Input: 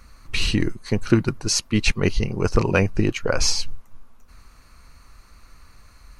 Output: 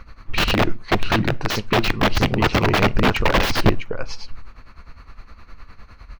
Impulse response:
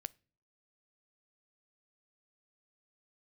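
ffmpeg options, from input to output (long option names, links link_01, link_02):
-filter_complex "[0:a]tremolo=f=9.8:d=0.82,aecho=1:1:652:0.224,aeval=exprs='(mod(9.44*val(0)+1,2)-1)/9.44':channel_layout=same,asplit=2[link_01][link_02];[1:a]atrim=start_sample=2205,afade=type=out:start_time=0.19:duration=0.01,atrim=end_sample=8820,lowpass=3600[link_03];[link_02][link_03]afir=irnorm=-1:irlink=0,volume=19dB[link_04];[link_01][link_04]amix=inputs=2:normalize=0,volume=-6.5dB"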